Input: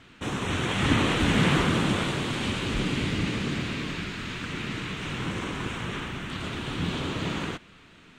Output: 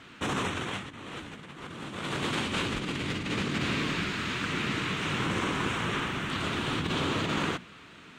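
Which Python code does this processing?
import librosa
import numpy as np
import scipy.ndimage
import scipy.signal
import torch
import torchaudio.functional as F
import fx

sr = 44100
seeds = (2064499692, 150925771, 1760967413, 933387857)

y = fx.highpass(x, sr, hz=100.0, slope=6)
y = fx.peak_eq(y, sr, hz=1200.0, db=2.5, octaves=0.75)
y = fx.hum_notches(y, sr, base_hz=60, count=4)
y = fx.over_compress(y, sr, threshold_db=-31.0, ratio=-0.5)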